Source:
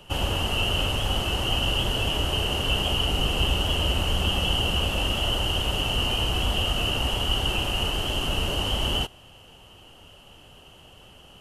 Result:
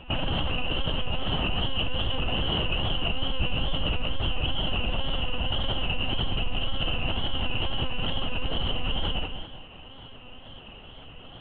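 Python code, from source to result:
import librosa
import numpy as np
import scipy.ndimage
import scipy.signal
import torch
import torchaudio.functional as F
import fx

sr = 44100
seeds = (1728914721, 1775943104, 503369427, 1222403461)

p1 = fx.low_shelf(x, sr, hz=62.0, db=8.0)
p2 = fx.lpc_monotone(p1, sr, seeds[0], pitch_hz=260.0, order=16)
p3 = fx.echo_feedback(p2, sr, ms=198, feedback_pct=32, wet_db=-5.5)
p4 = fx.over_compress(p3, sr, threshold_db=-27.0, ratio=-1.0)
p5 = p3 + F.gain(torch.from_numpy(p4), 0.0).numpy()
p6 = fx.wow_flutter(p5, sr, seeds[1], rate_hz=2.1, depth_cents=70.0)
y = F.gain(torch.from_numpy(p6), -8.5).numpy()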